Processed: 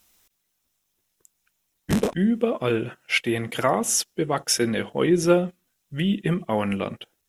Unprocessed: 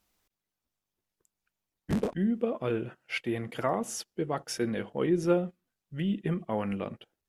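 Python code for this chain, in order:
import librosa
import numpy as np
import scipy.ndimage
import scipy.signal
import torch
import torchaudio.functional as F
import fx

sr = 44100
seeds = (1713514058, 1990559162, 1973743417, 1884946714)

y = fx.high_shelf(x, sr, hz=2400.0, db=10.0)
y = fx.notch(y, sr, hz=4600.0, q=11.0)
y = y * librosa.db_to_amplitude(6.5)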